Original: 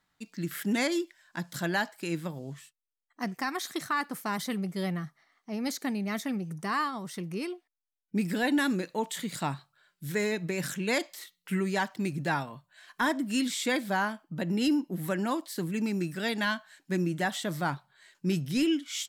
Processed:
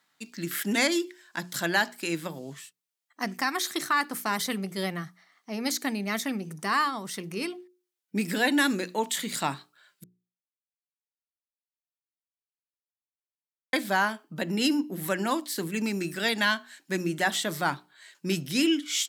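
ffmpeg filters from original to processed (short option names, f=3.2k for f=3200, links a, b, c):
-filter_complex "[0:a]asplit=3[a][b][c];[a]atrim=end=10.04,asetpts=PTS-STARTPTS,afade=t=out:st=10.036:d=0.004:c=hsin[d];[b]atrim=start=10.04:end=13.73,asetpts=PTS-STARTPTS,volume=0[e];[c]atrim=start=13.73,asetpts=PTS-STARTPTS,afade=t=in:d=0.004:c=hsin[f];[d][e][f]concat=n=3:v=0:a=1,highpass=240,equalizer=f=520:w=0.35:g=-4.5,bandreject=f=60:t=h:w=6,bandreject=f=120:t=h:w=6,bandreject=f=180:t=h:w=6,bandreject=f=240:t=h:w=6,bandreject=f=300:t=h:w=6,bandreject=f=360:t=h:w=6,bandreject=f=420:t=h:w=6,volume=7.5dB"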